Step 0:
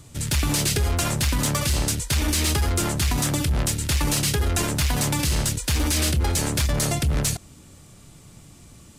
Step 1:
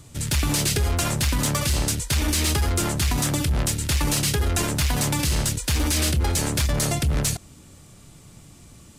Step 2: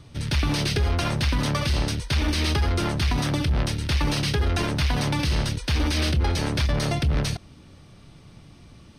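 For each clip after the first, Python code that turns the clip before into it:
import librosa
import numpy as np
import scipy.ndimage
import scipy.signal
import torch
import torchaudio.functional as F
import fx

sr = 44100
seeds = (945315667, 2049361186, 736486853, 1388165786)

y1 = x
y2 = scipy.signal.savgol_filter(y1, 15, 4, mode='constant')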